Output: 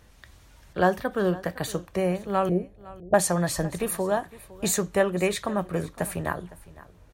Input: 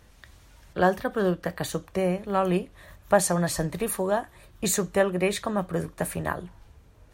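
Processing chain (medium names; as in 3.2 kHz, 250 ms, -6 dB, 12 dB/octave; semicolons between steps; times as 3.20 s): 2.49–3.14 s: steep low-pass 740 Hz 72 dB/octave; delay 509 ms -19.5 dB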